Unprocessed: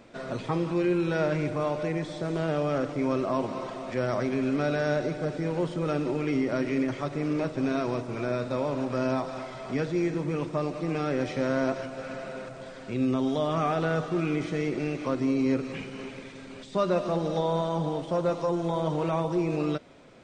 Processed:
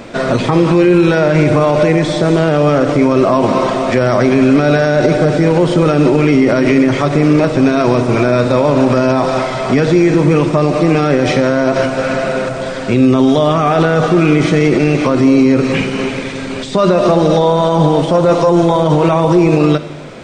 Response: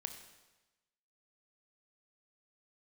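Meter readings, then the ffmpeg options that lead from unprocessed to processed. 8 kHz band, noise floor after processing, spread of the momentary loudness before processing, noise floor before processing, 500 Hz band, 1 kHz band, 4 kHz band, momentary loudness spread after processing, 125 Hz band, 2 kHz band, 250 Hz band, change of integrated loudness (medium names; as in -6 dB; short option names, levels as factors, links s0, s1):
+18.5 dB, -22 dBFS, 9 LU, -43 dBFS, +17.0 dB, +16.5 dB, +18.0 dB, 6 LU, +18.0 dB, +17.0 dB, +17.0 dB, +17.0 dB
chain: -filter_complex "[0:a]asplit=2[s0][s1];[1:a]atrim=start_sample=2205[s2];[s1][s2]afir=irnorm=-1:irlink=0,volume=0.75[s3];[s0][s3]amix=inputs=2:normalize=0,alimiter=level_in=8.41:limit=0.891:release=50:level=0:latency=1,volume=0.891"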